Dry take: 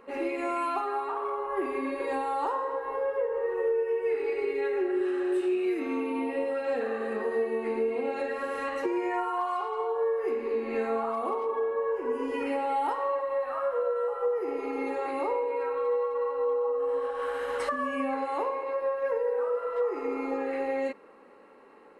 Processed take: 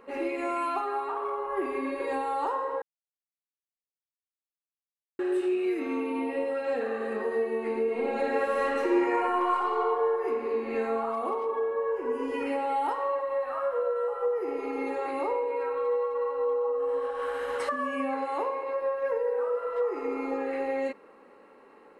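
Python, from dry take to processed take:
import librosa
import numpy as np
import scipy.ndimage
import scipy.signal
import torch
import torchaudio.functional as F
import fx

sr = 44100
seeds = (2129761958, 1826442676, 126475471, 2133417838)

y = fx.reverb_throw(x, sr, start_s=7.83, length_s=2.03, rt60_s=2.5, drr_db=-1.5)
y = fx.highpass(y, sr, hz=91.0, slope=6, at=(17.56, 18.7))
y = fx.edit(y, sr, fx.silence(start_s=2.82, length_s=2.37), tone=tone)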